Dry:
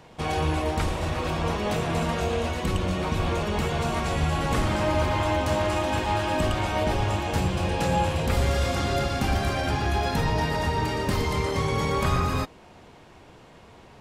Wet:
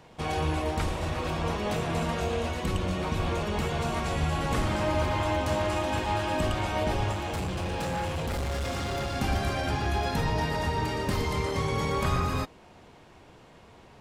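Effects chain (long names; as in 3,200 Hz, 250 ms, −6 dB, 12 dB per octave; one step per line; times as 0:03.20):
0:07.12–0:09.16: gain into a clipping stage and back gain 25 dB
level −3 dB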